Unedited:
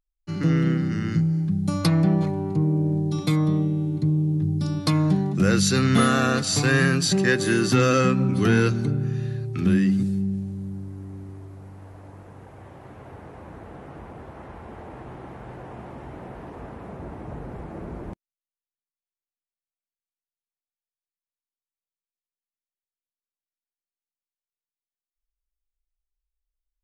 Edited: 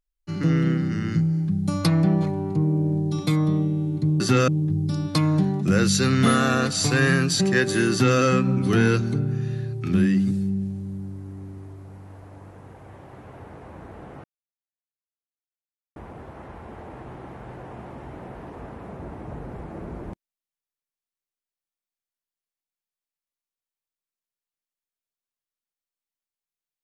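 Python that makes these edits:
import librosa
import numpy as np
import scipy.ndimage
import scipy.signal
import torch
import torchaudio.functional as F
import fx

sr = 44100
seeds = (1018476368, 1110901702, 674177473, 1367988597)

y = fx.edit(x, sr, fx.duplicate(start_s=7.63, length_s=0.28, to_s=4.2),
    fx.insert_silence(at_s=13.96, length_s=1.72), tone=tone)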